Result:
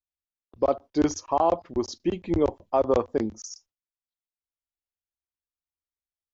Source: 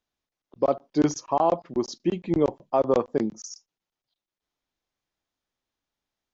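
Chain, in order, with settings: gate with hold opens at -46 dBFS; resonant low shelf 110 Hz +7.5 dB, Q 3

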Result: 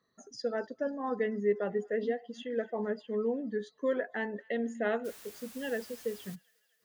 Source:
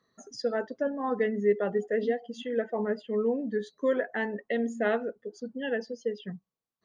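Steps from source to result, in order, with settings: 5.04–6.34 s: added noise white -48 dBFS; feedback echo behind a high-pass 246 ms, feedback 63%, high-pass 1.6 kHz, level -23 dB; trim -4 dB

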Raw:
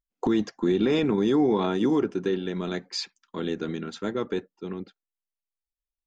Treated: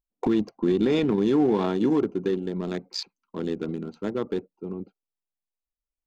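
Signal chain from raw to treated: local Wiener filter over 25 samples; trim +1 dB

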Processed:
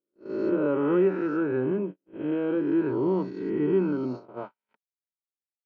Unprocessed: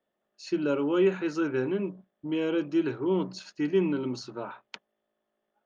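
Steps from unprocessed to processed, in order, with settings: reverse spectral sustain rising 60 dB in 1.58 s; gate -32 dBFS, range -48 dB; low-pass 1.3 kHz 12 dB/octave

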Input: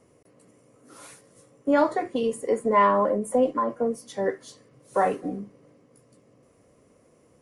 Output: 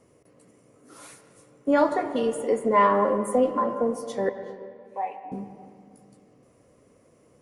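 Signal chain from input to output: 4.29–5.32 s: two resonant band-passes 1.4 kHz, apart 1.5 oct; reverberation RT60 2.0 s, pre-delay 90 ms, DRR 9.5 dB

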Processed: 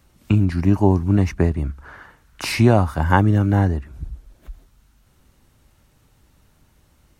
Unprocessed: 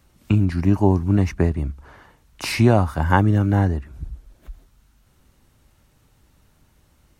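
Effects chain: 1.64–2.44 s: peaking EQ 1.5 kHz +9 dB 0.71 oct; trim +1 dB

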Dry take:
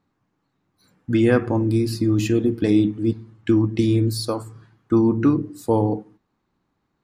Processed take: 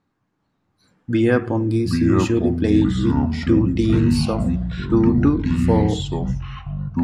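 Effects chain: low-pass 9.7 kHz 12 dB/octave; peaking EQ 1.6 kHz +2.5 dB 0.25 oct; ever faster or slower copies 401 ms, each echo -5 st, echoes 3

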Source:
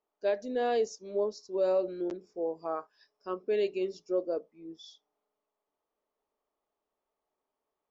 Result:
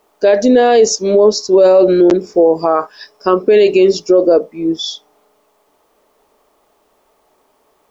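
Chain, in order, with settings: loudness maximiser +30 dB; trim -1 dB

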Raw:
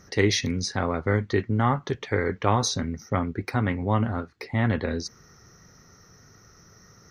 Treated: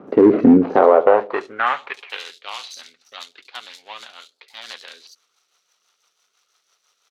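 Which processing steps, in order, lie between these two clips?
median filter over 25 samples; high-pass sweep 260 Hz -> 3.9 kHz, 0.52–2.25 s; treble shelf 2.6 kHz -5.5 dB; on a send: feedback echo behind a low-pass 72 ms, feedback 40%, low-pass 510 Hz, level -16 dB; on the sum: low-pass that closes with the level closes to 2 kHz, closed at -23.5 dBFS; bands offset in time lows, highs 70 ms, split 4 kHz; rotary cabinet horn 0.85 Hz, later 6 Hz, at 2.14 s; in parallel at -7 dB: overload inside the chain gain 21.5 dB; on the sum: peaking EQ 820 Hz +11 dB 2.7 oct; loudness maximiser +9 dB; trim -1 dB

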